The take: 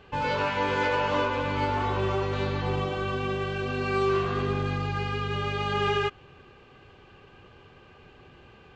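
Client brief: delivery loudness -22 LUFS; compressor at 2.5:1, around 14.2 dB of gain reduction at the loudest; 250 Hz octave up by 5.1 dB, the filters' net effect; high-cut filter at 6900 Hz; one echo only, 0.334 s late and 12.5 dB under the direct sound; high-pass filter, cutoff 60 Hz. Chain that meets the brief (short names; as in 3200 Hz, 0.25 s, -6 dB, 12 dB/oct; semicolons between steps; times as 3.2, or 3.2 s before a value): HPF 60 Hz; LPF 6900 Hz; bell 250 Hz +7 dB; compressor 2.5:1, threshold -43 dBFS; echo 0.334 s -12.5 dB; gain +17 dB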